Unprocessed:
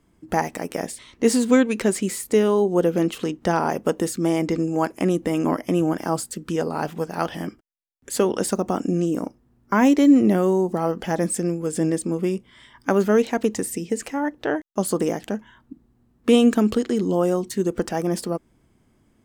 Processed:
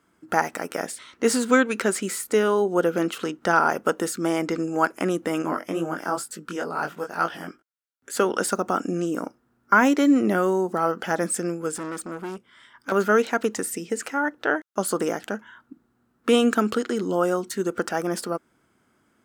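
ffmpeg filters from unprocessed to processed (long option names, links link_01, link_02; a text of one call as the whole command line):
ffmpeg -i in.wav -filter_complex "[0:a]asettb=1/sr,asplit=3[link_01][link_02][link_03];[link_01]atrim=end=5.424[link_04];[link_02]atrim=start=5.42:end=8.17,asetpts=PTS-STARTPTS,afade=type=in:duration=0.004:curve=qsin,afade=type=out:start_time=2.746:duration=0.004:curve=qsin,flanger=delay=17.5:depth=4.8:speed=2.2[link_05];[link_03]atrim=start=8.166[link_06];[link_04][link_05]acrossfade=duration=0.004:curve1=hsin:curve2=qsin[link_07];[link_07][link_06]acrossfade=duration=0.004:curve1=qsin:curve2=hsin,asettb=1/sr,asplit=3[link_08][link_09][link_10];[link_08]atrim=end=11.764[link_11];[link_09]atrim=start=11.76:end=12.92,asetpts=PTS-STARTPTS,afade=type=in:duration=0.004:curve=qsin,afade=type=out:start_time=1.156:duration=0.004:curve=qsin,aeval=exprs='(tanh(20*val(0)+0.7)-tanh(0.7))/20':channel_layout=same[link_12];[link_10]atrim=start=12.916[link_13];[link_11][link_12]acrossfade=duration=0.004:curve1=hsin:curve2=qsin[link_14];[link_14][link_13]acrossfade=duration=0.004:curve1=qsin:curve2=hsin,highpass=frequency=350:poles=1,equalizer=frequency=1400:width=3.8:gain=12" out.wav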